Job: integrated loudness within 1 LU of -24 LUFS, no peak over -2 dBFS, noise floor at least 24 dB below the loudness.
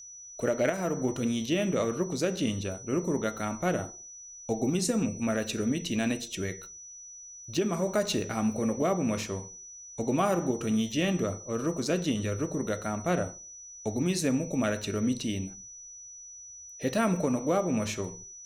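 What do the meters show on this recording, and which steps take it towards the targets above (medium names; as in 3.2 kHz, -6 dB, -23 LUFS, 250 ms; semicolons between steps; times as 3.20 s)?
steady tone 5.9 kHz; tone level -44 dBFS; loudness -30.0 LUFS; peak level -13.0 dBFS; loudness target -24.0 LUFS
-> band-stop 5.9 kHz, Q 30; trim +6 dB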